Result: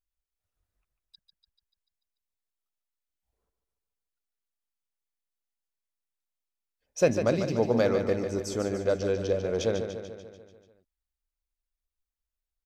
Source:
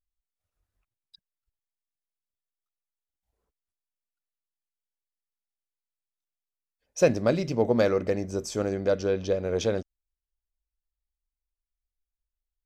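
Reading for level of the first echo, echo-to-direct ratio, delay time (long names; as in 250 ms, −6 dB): −8.0 dB, −6.0 dB, 146 ms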